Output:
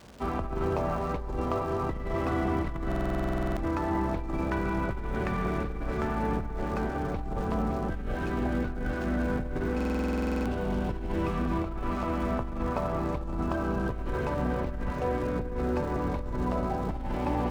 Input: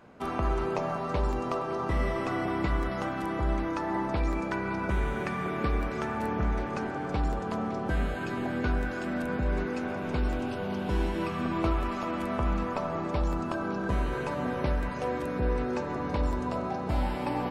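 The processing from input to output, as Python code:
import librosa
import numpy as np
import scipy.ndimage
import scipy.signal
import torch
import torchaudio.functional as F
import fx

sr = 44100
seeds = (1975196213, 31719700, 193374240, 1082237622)

p1 = fx.octave_divider(x, sr, octaves=2, level_db=0.0)
p2 = fx.high_shelf(p1, sr, hz=2300.0, db=-8.5)
p3 = fx.dmg_crackle(p2, sr, seeds[0], per_s=580.0, level_db=-45.0)
p4 = fx.over_compress(p3, sr, threshold_db=-29.0, ratio=-1.0)
p5 = p4 + fx.echo_single(p4, sr, ms=239, db=-18.5, dry=0)
p6 = fx.buffer_glitch(p5, sr, at_s=(2.87, 9.76), block=2048, repeats=14)
y = fx.running_max(p6, sr, window=3)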